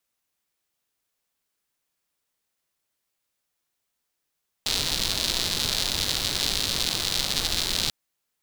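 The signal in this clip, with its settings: rain from filtered ticks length 3.24 s, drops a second 170, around 4 kHz, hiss -5.5 dB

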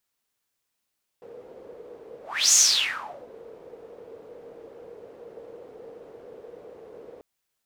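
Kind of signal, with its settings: whoosh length 5.99 s, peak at 1.31 s, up 0.33 s, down 0.77 s, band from 470 Hz, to 6.7 kHz, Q 8.4, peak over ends 28 dB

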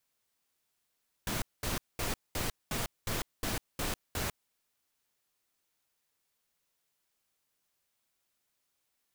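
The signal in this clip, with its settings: noise bursts pink, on 0.15 s, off 0.21 s, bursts 9, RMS -33.5 dBFS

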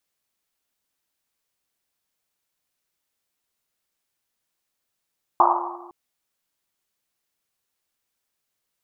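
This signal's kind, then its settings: Risset drum length 0.51 s, pitch 350 Hz, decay 1.69 s, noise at 940 Hz, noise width 440 Hz, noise 80%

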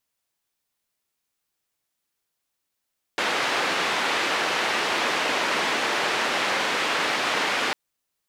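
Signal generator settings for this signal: noise band 300–2500 Hz, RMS -24.5 dBFS 4.55 s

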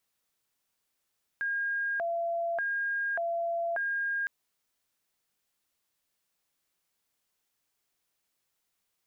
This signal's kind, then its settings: siren hi-lo 679–1620 Hz 0.85 per s sine -28 dBFS 2.86 s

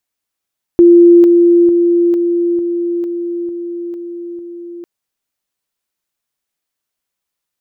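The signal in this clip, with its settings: level ladder 345 Hz -2 dBFS, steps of -3 dB, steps 9, 0.45 s 0.00 s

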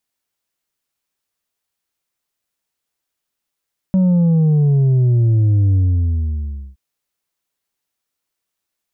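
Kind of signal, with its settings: sub drop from 190 Hz, over 2.82 s, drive 4 dB, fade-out 1.02 s, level -11 dB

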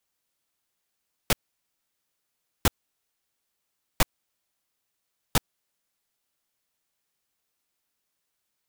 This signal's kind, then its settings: noise bursts pink, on 0.03 s, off 1.32 s, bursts 4, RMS -18.5 dBFS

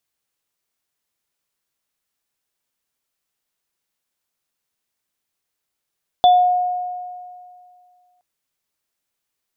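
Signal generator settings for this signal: sine partials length 1.97 s, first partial 722 Hz, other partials 3.48 kHz, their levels -11 dB, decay 2.23 s, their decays 0.32 s, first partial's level -7 dB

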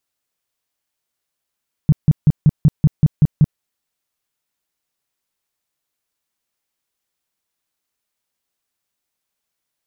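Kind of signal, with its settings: tone bursts 151 Hz, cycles 5, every 0.19 s, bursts 9, -6 dBFS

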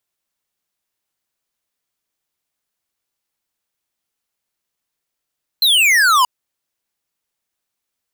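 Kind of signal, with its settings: laser zap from 4.2 kHz, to 960 Hz, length 0.63 s square, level -12 dB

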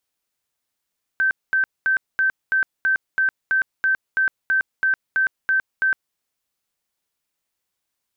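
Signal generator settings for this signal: tone bursts 1.55 kHz, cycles 169, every 0.33 s, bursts 15, -15.5 dBFS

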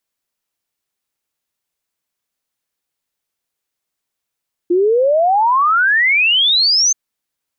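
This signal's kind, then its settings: log sweep 340 Hz -> 6.4 kHz 2.23 s -10 dBFS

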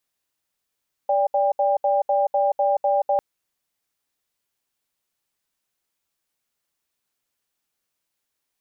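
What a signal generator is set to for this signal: cadence 580 Hz, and 799 Hz, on 0.18 s, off 0.07 s, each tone -19.5 dBFS 2.10 s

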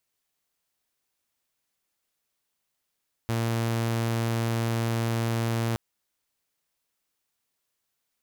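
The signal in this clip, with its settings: tone saw 115 Hz -22 dBFS 2.47 s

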